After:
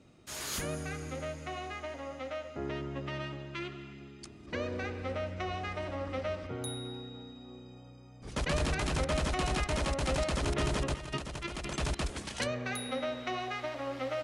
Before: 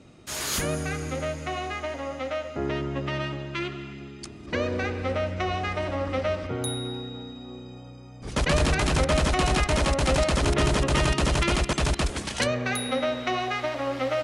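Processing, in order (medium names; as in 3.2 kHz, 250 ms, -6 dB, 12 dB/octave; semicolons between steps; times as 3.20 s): 10.94–11.76 s: compressor with a negative ratio -28 dBFS, ratio -0.5; trim -8.5 dB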